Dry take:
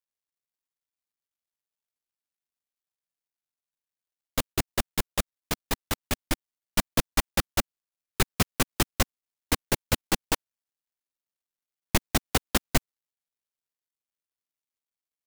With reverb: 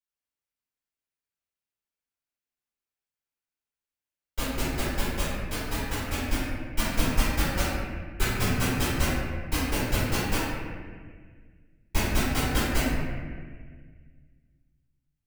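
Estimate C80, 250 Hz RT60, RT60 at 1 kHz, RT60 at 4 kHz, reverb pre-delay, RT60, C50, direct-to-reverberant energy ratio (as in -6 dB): -0.5 dB, 2.3 s, 1.5 s, 1.3 s, 3 ms, 1.7 s, -3.5 dB, -14.5 dB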